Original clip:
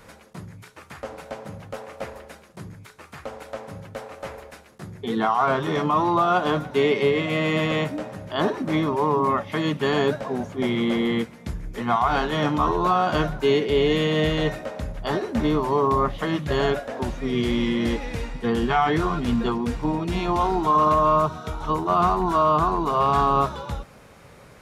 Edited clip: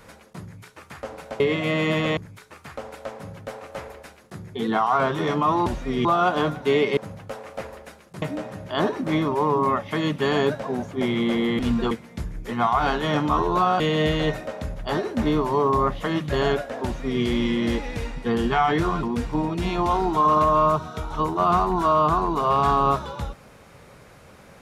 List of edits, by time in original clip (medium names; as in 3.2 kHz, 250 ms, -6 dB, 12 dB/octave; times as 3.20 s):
1.40–2.65 s: swap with 7.06–7.83 s
13.09–13.98 s: delete
17.02–17.41 s: copy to 6.14 s
19.21–19.53 s: move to 11.20 s